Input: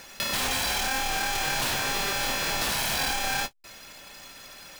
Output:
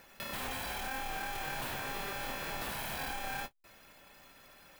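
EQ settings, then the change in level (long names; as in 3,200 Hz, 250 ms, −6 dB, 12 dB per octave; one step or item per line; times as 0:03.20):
parametric band 5,700 Hz −10.5 dB 1.7 octaves
−8.5 dB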